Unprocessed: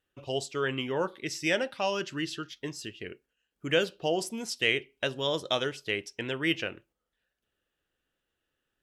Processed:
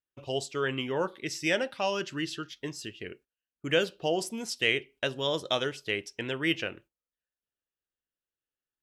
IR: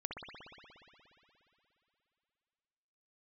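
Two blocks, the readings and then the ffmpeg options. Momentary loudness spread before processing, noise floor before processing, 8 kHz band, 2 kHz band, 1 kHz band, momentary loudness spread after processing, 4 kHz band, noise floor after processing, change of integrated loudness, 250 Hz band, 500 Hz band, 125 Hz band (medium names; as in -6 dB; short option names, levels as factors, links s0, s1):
11 LU, -84 dBFS, 0.0 dB, 0.0 dB, 0.0 dB, 11 LU, 0.0 dB, under -85 dBFS, 0.0 dB, 0.0 dB, 0.0 dB, 0.0 dB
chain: -af "agate=range=0.141:threshold=0.002:ratio=16:detection=peak"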